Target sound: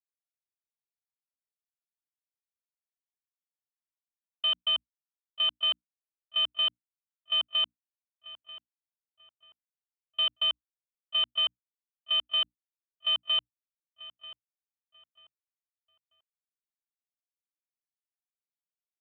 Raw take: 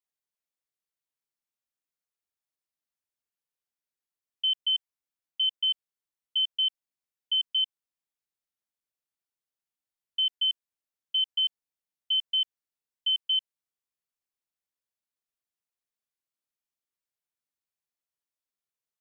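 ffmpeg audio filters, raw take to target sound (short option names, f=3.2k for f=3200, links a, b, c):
-filter_complex "[0:a]afwtdn=0.0112,aresample=8000,acrusher=bits=4:mix=0:aa=0.5,aresample=44100,bandreject=f=60:t=h:w=6,bandreject=f=120:t=h:w=6,bandreject=f=180:t=h:w=6,bandreject=f=240:t=h:w=6,bandreject=f=300:t=h:w=6,agate=range=-33dB:threshold=-31dB:ratio=3:detection=peak,asplit=2[a][b];[b]adelay=939,lowpass=f=2.8k:p=1,volume=-15.5dB,asplit=2[c][d];[d]adelay=939,lowpass=f=2.8k:p=1,volume=0.29,asplit=2[e][f];[f]adelay=939,lowpass=f=2.8k:p=1,volume=0.29[g];[a][c][e][g]amix=inputs=4:normalize=0"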